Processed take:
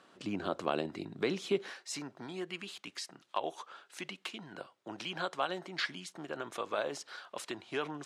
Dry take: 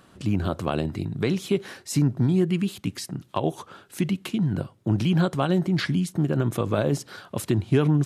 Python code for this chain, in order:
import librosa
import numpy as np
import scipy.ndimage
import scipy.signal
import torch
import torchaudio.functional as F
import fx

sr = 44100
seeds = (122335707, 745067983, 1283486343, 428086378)

y = fx.bandpass_edges(x, sr, low_hz=fx.steps((0.0, 330.0), (1.7, 690.0)), high_hz=6700.0)
y = y * librosa.db_to_amplitude(-4.5)